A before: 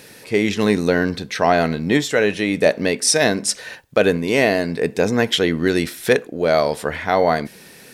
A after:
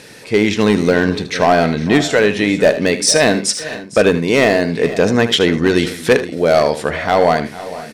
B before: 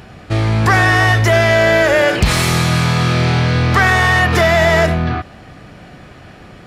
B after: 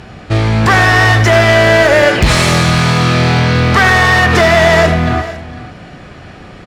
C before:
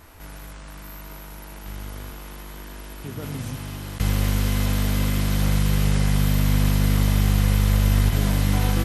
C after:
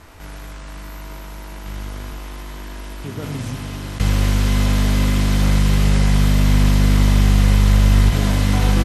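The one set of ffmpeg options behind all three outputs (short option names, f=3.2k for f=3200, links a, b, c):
-filter_complex "[0:a]lowpass=8.8k,asoftclip=type=hard:threshold=-9dB,asplit=2[a][b];[b]aecho=0:1:77|456|501:0.237|0.133|0.126[c];[a][c]amix=inputs=2:normalize=0,volume=4.5dB"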